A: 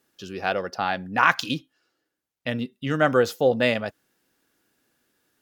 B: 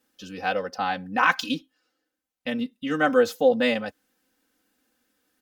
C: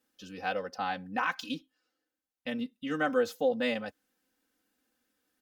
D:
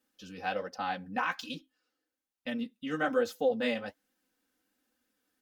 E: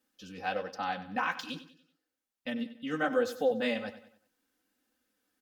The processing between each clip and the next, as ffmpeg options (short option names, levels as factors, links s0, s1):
-af "aecho=1:1:3.9:0.96,volume=0.631"
-af "alimiter=limit=0.282:level=0:latency=1:release=382,volume=0.473"
-af "flanger=delay=3.2:depth=9.2:regen=-45:speed=1.2:shape=sinusoidal,volume=1.41"
-af "aecho=1:1:95|190|285|380:0.2|0.0838|0.0352|0.0148"